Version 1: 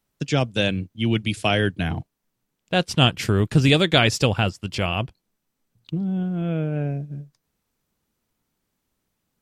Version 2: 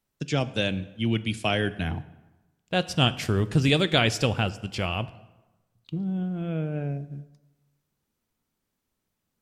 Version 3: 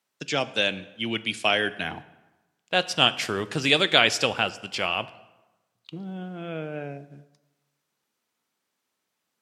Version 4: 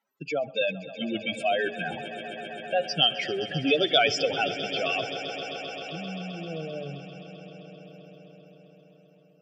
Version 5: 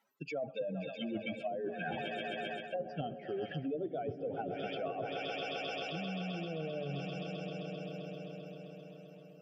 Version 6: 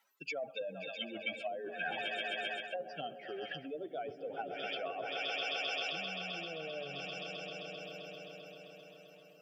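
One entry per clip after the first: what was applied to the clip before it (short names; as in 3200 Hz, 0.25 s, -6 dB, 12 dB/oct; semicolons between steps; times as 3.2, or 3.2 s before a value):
plate-style reverb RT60 1.1 s, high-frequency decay 0.7×, DRR 14 dB; gain -4.5 dB
weighting filter A; gain +4 dB
spectral contrast raised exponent 3.3; swelling echo 0.131 s, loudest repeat 5, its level -16.5 dB; gain -1.5 dB
treble ducked by the level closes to 400 Hz, closed at -22 dBFS; reverse; compressor 5:1, threshold -41 dBFS, peak gain reduction 15.5 dB; reverse; gain +4.5 dB
HPF 1500 Hz 6 dB/oct; gain +6.5 dB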